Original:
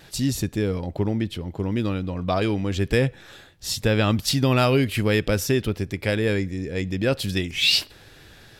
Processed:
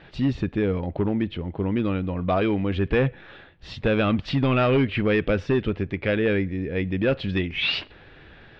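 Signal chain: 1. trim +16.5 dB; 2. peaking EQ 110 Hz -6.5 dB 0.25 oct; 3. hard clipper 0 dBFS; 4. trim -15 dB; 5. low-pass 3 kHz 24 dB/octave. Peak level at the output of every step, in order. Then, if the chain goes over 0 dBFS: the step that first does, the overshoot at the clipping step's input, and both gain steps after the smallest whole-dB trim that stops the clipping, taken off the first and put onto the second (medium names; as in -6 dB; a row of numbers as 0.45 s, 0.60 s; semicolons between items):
+9.5 dBFS, +9.5 dBFS, 0.0 dBFS, -15.0 dBFS, -13.0 dBFS; step 1, 9.5 dB; step 1 +6.5 dB, step 4 -5 dB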